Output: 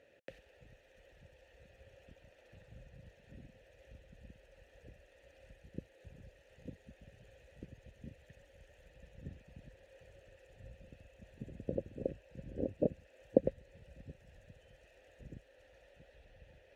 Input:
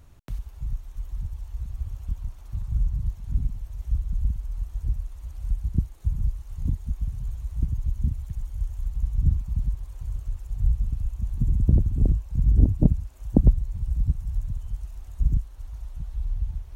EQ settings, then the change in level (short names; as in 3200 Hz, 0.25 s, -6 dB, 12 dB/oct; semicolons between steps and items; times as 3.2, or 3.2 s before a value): vowel filter e; low shelf 140 Hz -11 dB; +11.5 dB